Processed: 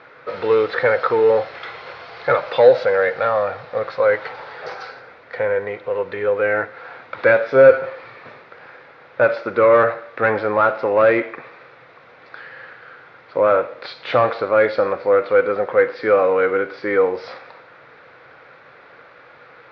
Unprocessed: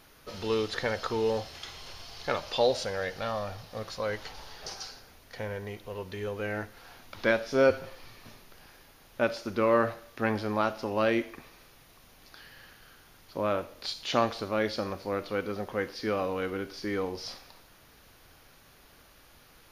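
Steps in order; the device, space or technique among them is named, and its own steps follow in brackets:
overdrive pedal into a guitar cabinet (mid-hump overdrive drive 17 dB, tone 2,300 Hz, clips at −10 dBFS; loudspeaker in its box 100–3,500 Hz, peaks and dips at 130 Hz +8 dB, 220 Hz −4 dB, 500 Hz +10 dB, 1,400 Hz +6 dB, 2,100 Hz +4 dB, 3,000 Hz −9 dB)
level +3 dB

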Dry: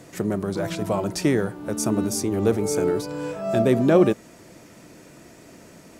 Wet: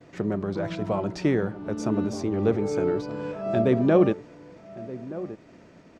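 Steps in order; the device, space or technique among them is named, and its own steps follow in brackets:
downward expander −44 dBFS
shout across a valley (high-frequency loss of the air 170 metres; slap from a distant wall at 210 metres, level −15 dB)
level −2 dB

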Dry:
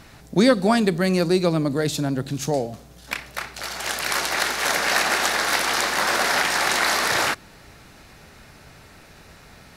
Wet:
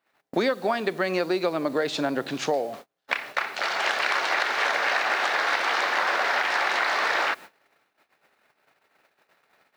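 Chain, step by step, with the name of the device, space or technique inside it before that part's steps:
baby monitor (band-pass filter 460–3,100 Hz; downward compressor 8 to 1, threshold −29 dBFS, peak gain reduction 15 dB; white noise bed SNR 30 dB; noise gate −47 dBFS, range −36 dB)
level +8 dB

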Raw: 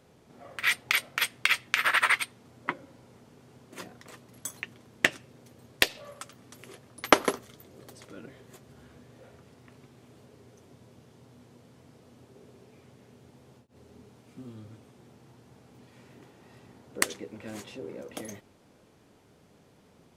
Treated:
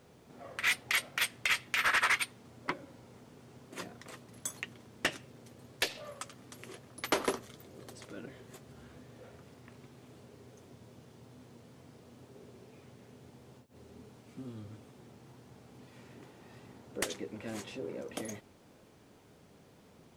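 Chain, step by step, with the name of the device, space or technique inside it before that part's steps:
compact cassette (soft clipping −22 dBFS, distortion −5 dB; low-pass filter 13,000 Hz; tape wow and flutter; white noise bed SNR 39 dB)

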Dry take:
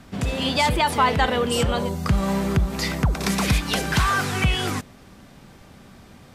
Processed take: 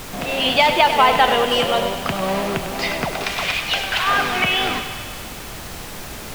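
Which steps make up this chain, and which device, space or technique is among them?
0:03.24–0:04.07: high-pass filter 1,300 Hz 6 dB per octave
horn gramophone (band-pass filter 260–4,200 Hz; parametric band 680 Hz +8 dB 0.53 octaves; tape wow and flutter; pink noise bed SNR 11 dB)
dynamic equaliser 2,800 Hz, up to +7 dB, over −41 dBFS, Q 1.7
feedback echo with a high-pass in the loop 100 ms, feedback 73%, high-pass 410 Hz, level −9.5 dB
level +2 dB

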